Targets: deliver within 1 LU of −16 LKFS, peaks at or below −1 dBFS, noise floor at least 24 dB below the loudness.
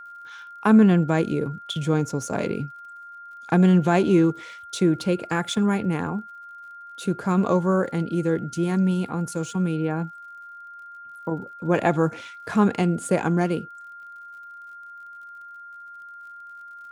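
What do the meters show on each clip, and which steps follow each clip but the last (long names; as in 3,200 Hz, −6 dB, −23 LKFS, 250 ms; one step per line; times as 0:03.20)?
crackle rate 50 per second; interfering tone 1,400 Hz; level of the tone −39 dBFS; integrated loudness −23.0 LKFS; sample peak −5.0 dBFS; target loudness −16.0 LKFS
→ click removal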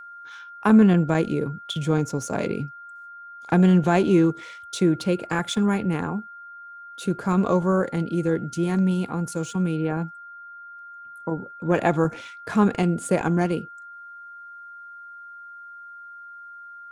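crackle rate 0.65 per second; interfering tone 1,400 Hz; level of the tone −39 dBFS
→ notch filter 1,400 Hz, Q 30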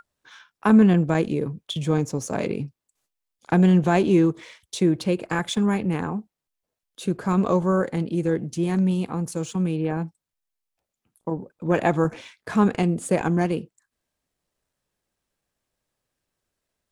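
interfering tone none found; integrated loudness −23.0 LKFS; sample peak −5.5 dBFS; target loudness −16.0 LKFS
→ level +7 dB
brickwall limiter −1 dBFS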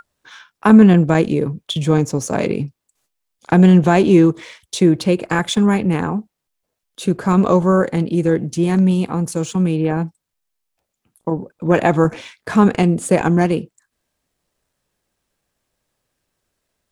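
integrated loudness −16.0 LKFS; sample peak −1.0 dBFS; background noise floor −79 dBFS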